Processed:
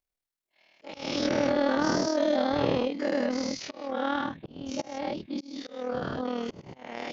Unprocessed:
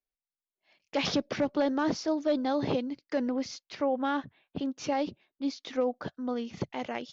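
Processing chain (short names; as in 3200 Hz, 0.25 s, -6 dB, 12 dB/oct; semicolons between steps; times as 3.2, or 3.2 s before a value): spectral dilation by 0.24 s; AM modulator 39 Hz, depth 45%; auto swell 0.39 s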